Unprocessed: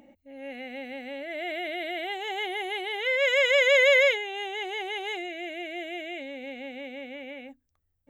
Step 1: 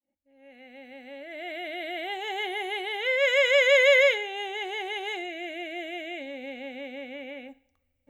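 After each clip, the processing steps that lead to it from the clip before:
fade in at the beginning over 2.26 s
coupled-rooms reverb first 0.54 s, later 2.7 s, from −26 dB, DRR 14 dB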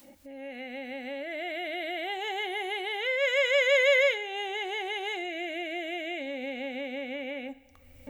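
upward compression, threshold −24 dBFS
level −3.5 dB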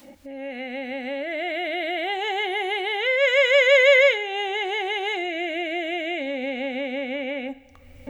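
high-shelf EQ 7,500 Hz −10 dB
level +7.5 dB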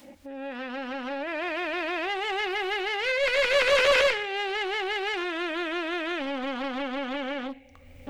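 one-sided soft clipper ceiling −25 dBFS
highs frequency-modulated by the lows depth 0.51 ms
level −1.5 dB

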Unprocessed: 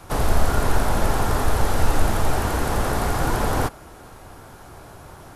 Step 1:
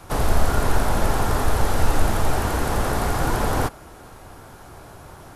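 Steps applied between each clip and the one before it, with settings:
no processing that can be heard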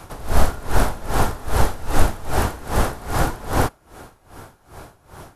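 tremolo with a sine in dB 2.5 Hz, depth 20 dB
level +5 dB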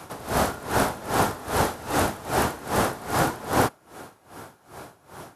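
high-pass filter 140 Hz 12 dB per octave

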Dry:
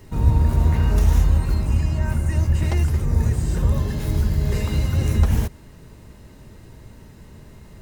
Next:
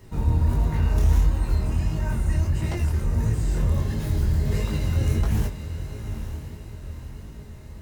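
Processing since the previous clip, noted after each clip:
soft clipping −8 dBFS, distortion −22 dB
feedback delay with all-pass diffusion 916 ms, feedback 45%, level −10 dB
chorus effect 1.5 Hz, delay 18.5 ms, depth 7.4 ms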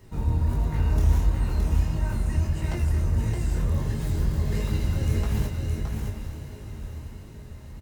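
single-tap delay 618 ms −4.5 dB
level −3 dB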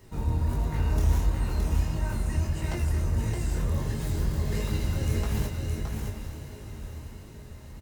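bass and treble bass −3 dB, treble +2 dB

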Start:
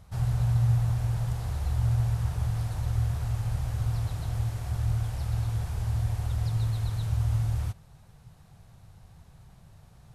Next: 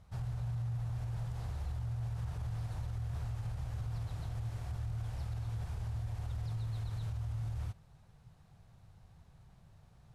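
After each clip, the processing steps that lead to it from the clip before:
high-shelf EQ 9,000 Hz −10 dB
brickwall limiter −24.5 dBFS, peak gain reduction 9 dB
level −7 dB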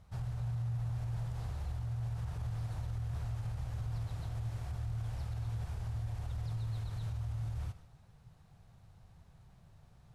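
convolution reverb RT60 0.60 s, pre-delay 60 ms, DRR 13 dB

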